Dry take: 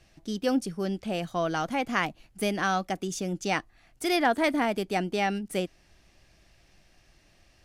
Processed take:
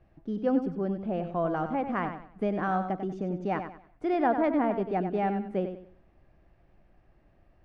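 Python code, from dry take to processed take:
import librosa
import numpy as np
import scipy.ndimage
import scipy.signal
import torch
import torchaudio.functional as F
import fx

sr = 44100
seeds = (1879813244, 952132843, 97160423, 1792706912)

p1 = scipy.signal.sosfilt(scipy.signal.butter(2, 1100.0, 'lowpass', fs=sr, output='sos'), x)
y = p1 + fx.echo_feedback(p1, sr, ms=95, feedback_pct=31, wet_db=-8.5, dry=0)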